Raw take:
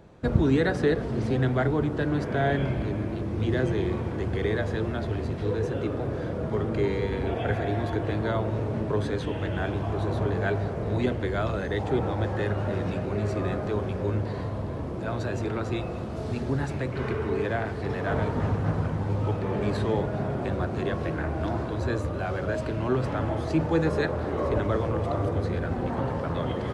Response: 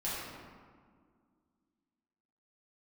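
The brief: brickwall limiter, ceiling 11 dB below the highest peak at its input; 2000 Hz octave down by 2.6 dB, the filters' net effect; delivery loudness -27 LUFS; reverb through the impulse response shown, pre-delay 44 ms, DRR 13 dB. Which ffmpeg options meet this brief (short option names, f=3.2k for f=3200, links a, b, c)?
-filter_complex "[0:a]equalizer=f=2k:t=o:g=-3.5,alimiter=limit=-18.5dB:level=0:latency=1,asplit=2[a][b];[1:a]atrim=start_sample=2205,adelay=44[c];[b][c]afir=irnorm=-1:irlink=0,volume=-18dB[d];[a][d]amix=inputs=2:normalize=0,volume=2dB"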